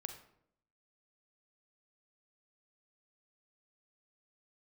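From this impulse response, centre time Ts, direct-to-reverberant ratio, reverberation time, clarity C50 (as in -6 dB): 16 ms, 6.5 dB, 0.70 s, 8.5 dB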